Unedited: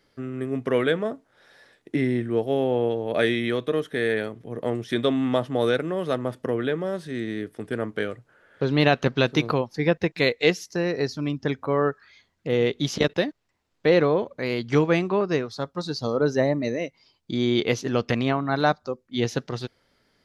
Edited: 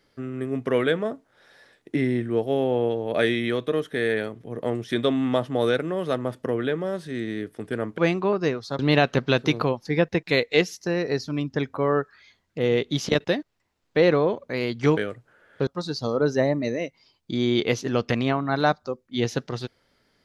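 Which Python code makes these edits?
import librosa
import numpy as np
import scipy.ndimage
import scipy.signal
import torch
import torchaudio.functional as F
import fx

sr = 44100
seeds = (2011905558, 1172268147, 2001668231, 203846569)

y = fx.edit(x, sr, fx.swap(start_s=7.98, length_s=0.7, other_s=14.86, other_length_s=0.81), tone=tone)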